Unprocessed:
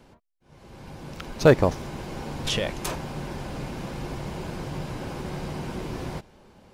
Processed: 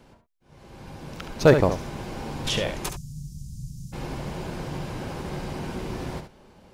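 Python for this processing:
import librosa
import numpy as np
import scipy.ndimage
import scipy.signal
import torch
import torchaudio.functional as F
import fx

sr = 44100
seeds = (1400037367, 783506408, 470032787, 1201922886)

p1 = fx.ellip_bandstop(x, sr, low_hz=150.0, high_hz=6100.0, order=3, stop_db=60, at=(2.88, 3.92), fade=0.02)
y = p1 + fx.echo_single(p1, sr, ms=70, db=-8.5, dry=0)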